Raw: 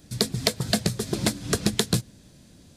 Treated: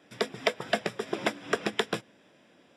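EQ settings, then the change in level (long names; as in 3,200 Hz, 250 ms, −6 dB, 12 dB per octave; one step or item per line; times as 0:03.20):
Savitzky-Golay smoothing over 25 samples
high-pass filter 460 Hz 12 dB per octave
+2.5 dB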